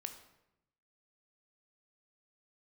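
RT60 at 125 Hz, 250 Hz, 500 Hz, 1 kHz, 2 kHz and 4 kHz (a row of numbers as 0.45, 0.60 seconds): 1.2, 1.1, 0.90, 0.85, 0.75, 0.60 seconds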